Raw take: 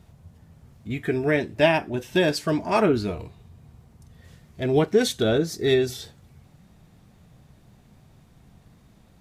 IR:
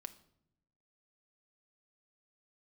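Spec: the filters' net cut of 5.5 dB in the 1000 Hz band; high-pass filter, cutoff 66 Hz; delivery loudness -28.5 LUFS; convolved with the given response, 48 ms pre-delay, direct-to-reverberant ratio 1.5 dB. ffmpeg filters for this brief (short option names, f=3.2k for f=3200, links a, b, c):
-filter_complex "[0:a]highpass=66,equalizer=f=1k:t=o:g=-7.5,asplit=2[a][b];[1:a]atrim=start_sample=2205,adelay=48[c];[b][c]afir=irnorm=-1:irlink=0,volume=3dB[d];[a][d]amix=inputs=2:normalize=0,volume=-6.5dB"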